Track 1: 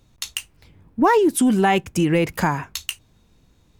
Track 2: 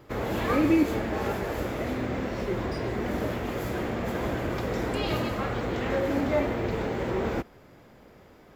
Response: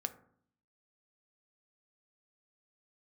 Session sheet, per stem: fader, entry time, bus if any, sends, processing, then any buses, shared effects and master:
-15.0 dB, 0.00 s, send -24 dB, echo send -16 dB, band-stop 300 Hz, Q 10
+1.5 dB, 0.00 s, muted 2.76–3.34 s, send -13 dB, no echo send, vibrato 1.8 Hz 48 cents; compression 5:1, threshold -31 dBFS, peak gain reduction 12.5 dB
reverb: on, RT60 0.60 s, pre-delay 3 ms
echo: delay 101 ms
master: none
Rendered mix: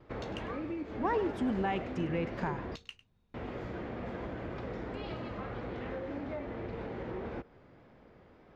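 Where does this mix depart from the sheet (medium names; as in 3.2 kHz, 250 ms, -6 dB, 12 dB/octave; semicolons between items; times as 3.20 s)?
stem 2 +1.5 dB -> -6.5 dB; master: extra distance through air 200 m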